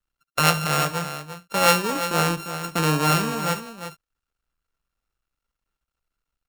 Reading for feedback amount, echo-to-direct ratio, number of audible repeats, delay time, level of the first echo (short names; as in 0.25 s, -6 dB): no steady repeat, -9.5 dB, 2, 70 ms, -18.0 dB